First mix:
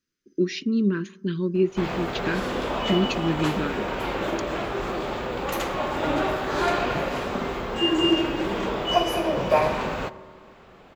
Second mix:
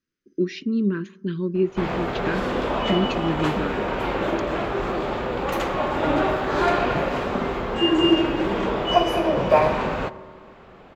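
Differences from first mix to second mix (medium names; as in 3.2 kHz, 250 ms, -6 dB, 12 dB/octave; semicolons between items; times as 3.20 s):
background +3.5 dB; master: add treble shelf 4.4 kHz -10.5 dB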